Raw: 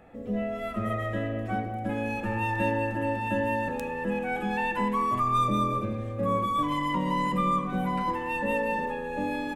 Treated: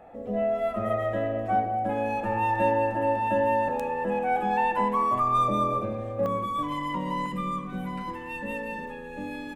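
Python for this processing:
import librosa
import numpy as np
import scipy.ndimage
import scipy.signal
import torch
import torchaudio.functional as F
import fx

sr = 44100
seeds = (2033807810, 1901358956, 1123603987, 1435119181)

y = fx.peak_eq(x, sr, hz=720.0, db=fx.steps((0.0, 12.5), (6.26, 2.5), (7.26, -5.5)), octaves=1.2)
y = F.gain(torch.from_numpy(y), -3.5).numpy()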